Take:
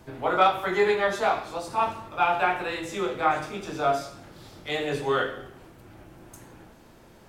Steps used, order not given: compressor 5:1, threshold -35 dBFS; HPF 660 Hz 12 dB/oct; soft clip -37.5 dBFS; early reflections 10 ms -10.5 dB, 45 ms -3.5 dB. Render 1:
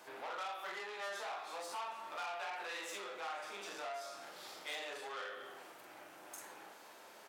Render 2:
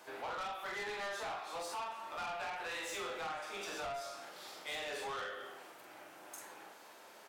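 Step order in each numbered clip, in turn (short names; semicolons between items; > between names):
compressor > early reflections > soft clip > HPF; HPF > compressor > early reflections > soft clip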